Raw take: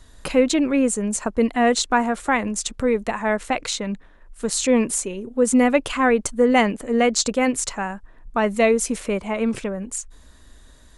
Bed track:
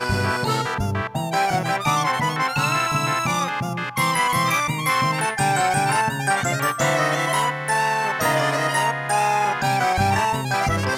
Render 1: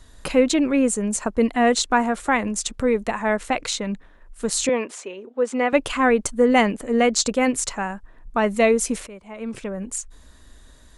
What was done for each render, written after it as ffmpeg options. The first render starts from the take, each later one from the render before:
-filter_complex "[0:a]asettb=1/sr,asplit=3[a][b][c];[a]atrim=end=4.694[d];[b]atrim=start=4.69:end=5.73,asetpts=PTS-STARTPTS,afade=t=in:d=0.004:c=qsin,afade=t=out:st=1.036:d=0.004:c=qsin,highpass=440,lowpass=3.7k[e];[c]atrim=start=5.726[f];[d][e]acrossfade=d=0.004:c1=hsin:c2=qsin[g];[g][f]acrossfade=d=0.004:c1=qsin:c2=hsin,asplit=2[h][i];[h]atrim=end=9.07,asetpts=PTS-STARTPTS,afade=t=out:st=9.066:d=0.004:c=hsin:silence=0.141254[j];[i]atrim=start=9.07,asetpts=PTS-STARTPTS,afade=t=in:d=0.75:c=qua:silence=0.141254[k];[j][k]concat=n=2:v=0:a=1"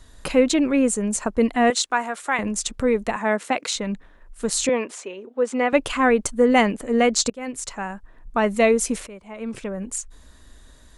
-filter_complex "[0:a]asettb=1/sr,asplit=3[a][b][c];[a]atrim=end=1.704[d];[b]atrim=start=1.7:end=2.39,asetpts=PTS-STARTPTS,afade=t=in:d=0.004:c=qsin,afade=t=out:st=0.686:d=0.004:c=qsin,highpass=f=930:p=1[e];[c]atrim=start=2.386[f];[d][e]acrossfade=d=0.004:c1=hsin:c2=qsin[g];[g][f]acrossfade=d=0.004:c1=qsin:c2=hsin,asettb=1/sr,asplit=3[h][i][j];[h]atrim=end=3.164[k];[i]atrim=start=3.16:end=3.76,asetpts=PTS-STARTPTS,afade=t=in:d=0.004:c=qsin,afade=t=out:st=0.596:d=0.004:c=qsin,highpass=f=160:w=0.5412,highpass=f=160:w=1.3066[l];[j]atrim=start=3.756[m];[k][l]acrossfade=d=0.004:c1=hsin:c2=qsin[n];[n][m]acrossfade=d=0.004:c1=qsin:c2=hsin,asplit=2[o][p];[o]atrim=end=7.3,asetpts=PTS-STARTPTS,afade=t=out:st=7.296:d=0.004:c=hsin:silence=0.0707946[q];[p]atrim=start=7.3,asetpts=PTS-STARTPTS,afade=t=in:d=1.12:c=qsin:silence=0.0707946[r];[q][r]concat=n=2:v=0:a=1"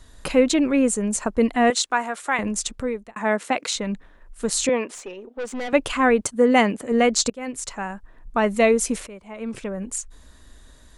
-filter_complex "[0:a]asettb=1/sr,asplit=3[a][b][c];[a]atrim=end=4.944[d];[b]atrim=start=4.94:end=5.71,asetpts=PTS-STARTPTS,afade=t=in:d=0.004:c=qsin,afade=t=out:st=0.766:d=0.004:c=qsin,aeval=exprs='(tanh(20*val(0)+0.3)-tanh(0.3))/20':c=same[e];[c]atrim=start=5.706[f];[d][e]acrossfade=d=0.004:c1=hsin:c2=qsin[g];[g][f]acrossfade=d=0.004:c1=qsin:c2=hsin,asettb=1/sr,asplit=3[h][i][j];[h]atrim=end=6.214[k];[i]atrim=start=6.21:end=6.92,asetpts=PTS-STARTPTS,afade=t=in:d=0.004:c=qsin,afade=t=out:st=0.706:d=0.004:c=qsin,highpass=88[l];[j]atrim=start=6.916[m];[k][l]acrossfade=d=0.004:c1=hsin:c2=qsin[n];[n][m]acrossfade=d=0.004:c1=qsin:c2=hsin,asplit=2[o][p];[o]atrim=end=3.16,asetpts=PTS-STARTPTS,afade=t=out:st=2.6:d=0.56[q];[p]atrim=start=3.16,asetpts=PTS-STARTPTS,afade=t=in:d=0.004:c=hsin[r];[q][r]concat=n=2:v=0:a=1"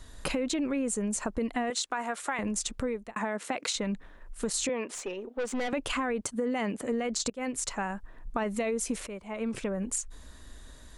-af "alimiter=limit=-14.5dB:level=0:latency=1:release=22,acompressor=threshold=-28dB:ratio=5"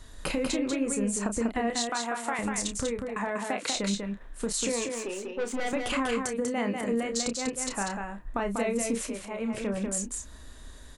-filter_complex "[0:a]asplit=2[a][b];[b]adelay=30,volume=-8dB[c];[a][c]amix=inputs=2:normalize=0,aecho=1:1:193:0.596"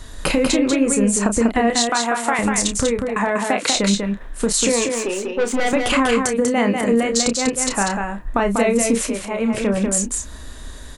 -af "volume=11.5dB"

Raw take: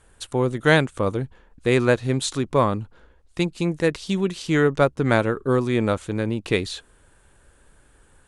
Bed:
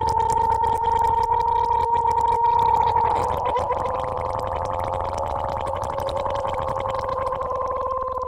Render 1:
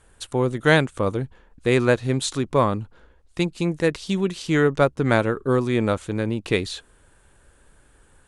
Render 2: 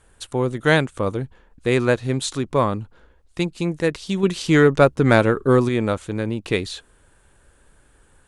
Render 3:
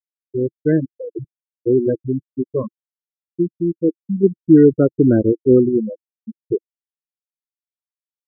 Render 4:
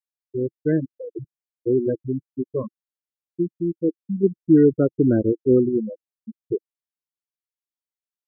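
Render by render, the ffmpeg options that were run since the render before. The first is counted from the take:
-af anull
-filter_complex "[0:a]asettb=1/sr,asplit=3[a][b][c];[a]atrim=end=4.234[d];[b]atrim=start=4.23:end=5.69,asetpts=PTS-STARTPTS,afade=t=in:d=0.004:c=qsin,afade=t=out:st=1.456:d=0.004:c=qsin,acontrast=30[e];[c]atrim=start=5.686[f];[d][e]acrossfade=d=0.004:c1=hsin:c2=qsin[g];[g][f]acrossfade=d=0.004:c1=qsin:c2=hsin"
-af "afftfilt=real='re*gte(hypot(re,im),0.562)':imag='im*gte(hypot(re,im),0.562)':win_size=1024:overlap=0.75,firequalizer=gain_entry='entry(140,0);entry(330,10);entry(670,-12)':delay=0.05:min_phase=1"
-af "volume=-4.5dB"

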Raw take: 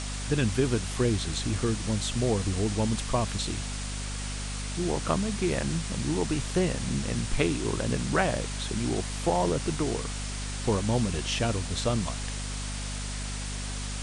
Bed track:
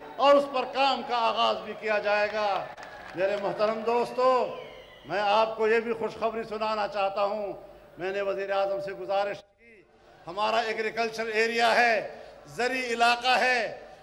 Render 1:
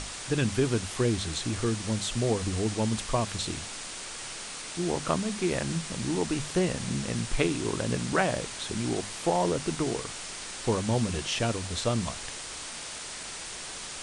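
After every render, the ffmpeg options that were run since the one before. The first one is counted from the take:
-af "bandreject=f=50:t=h:w=6,bandreject=f=100:t=h:w=6,bandreject=f=150:t=h:w=6,bandreject=f=200:t=h:w=6,bandreject=f=250:t=h:w=6"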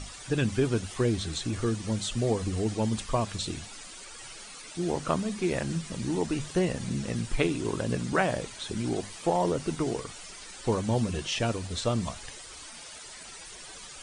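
-af "afftdn=nr=12:nf=-40"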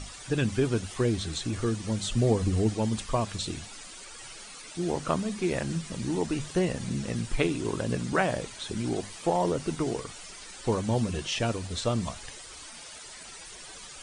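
-filter_complex "[0:a]asettb=1/sr,asplit=3[a][b][c];[a]atrim=end=2.034[d];[b]atrim=start=2.03:end=2.7,asetpts=PTS-STARTPTS,afade=t=in:d=0.004:c=qsin,afade=t=out:st=0.666:d=0.004:c=qsin,lowshelf=f=350:g=5.5[e];[c]atrim=start=2.696[f];[d][e]acrossfade=d=0.004:c1=hsin:c2=qsin[g];[g][f]acrossfade=d=0.004:c1=qsin:c2=hsin"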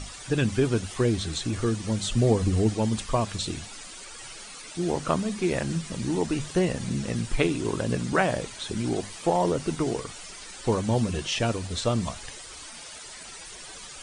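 -af "volume=2.5dB"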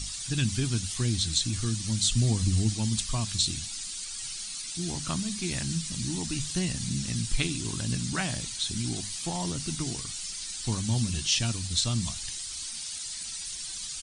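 -af "firequalizer=gain_entry='entry(110,0);entry(290,-7);entry(470,-21);entry(730,-12);entry(4100,7)':delay=0.05:min_phase=1"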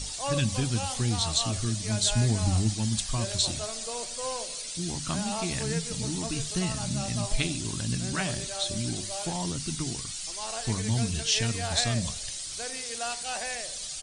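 -filter_complex "[1:a]volume=-12.5dB[a];[0:a][a]amix=inputs=2:normalize=0"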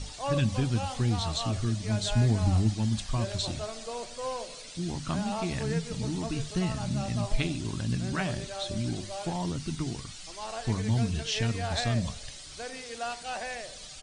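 -af "aemphasis=mode=reproduction:type=75fm"

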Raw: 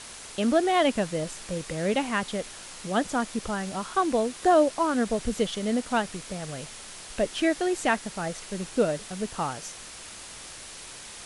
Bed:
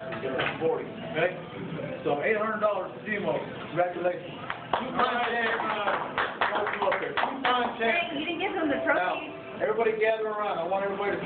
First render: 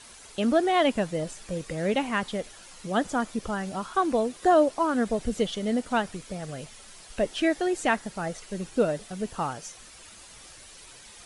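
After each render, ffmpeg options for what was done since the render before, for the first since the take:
-af "afftdn=nr=9:nf=-43"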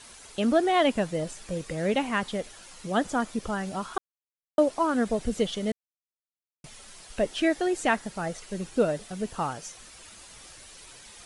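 -filter_complex "[0:a]asplit=5[a][b][c][d][e];[a]atrim=end=3.98,asetpts=PTS-STARTPTS,afade=t=out:st=3.976:d=0.004:c=hsin[f];[b]atrim=start=3.98:end=4.58,asetpts=PTS-STARTPTS,volume=0[g];[c]atrim=start=4.58:end=5.72,asetpts=PTS-STARTPTS,afade=t=in:d=0.004:c=hsin,afade=t=out:st=1.136:d=0.004:c=hsin[h];[d]atrim=start=5.72:end=6.64,asetpts=PTS-STARTPTS,volume=0[i];[e]atrim=start=6.64,asetpts=PTS-STARTPTS,afade=t=in:d=0.004:c=hsin[j];[f][g][h][i][j]concat=n=5:v=0:a=1"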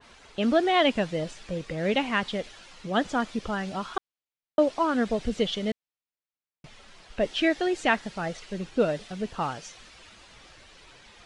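-af "lowpass=3.7k,adynamicequalizer=threshold=0.00708:dfrequency=2200:dqfactor=0.7:tfrequency=2200:tqfactor=0.7:attack=5:release=100:ratio=0.375:range=4:mode=boostabove:tftype=highshelf"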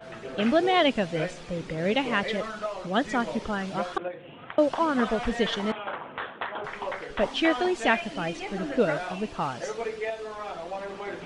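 -filter_complex "[1:a]volume=-7dB[a];[0:a][a]amix=inputs=2:normalize=0"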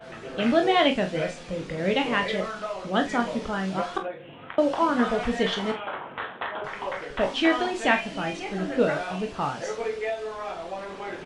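-filter_complex "[0:a]asplit=2[a][b];[b]adelay=48,volume=-12dB[c];[a][c]amix=inputs=2:normalize=0,aecho=1:1:21|37:0.422|0.316"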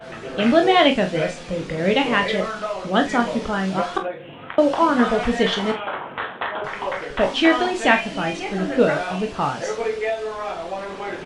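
-af "volume=5.5dB"

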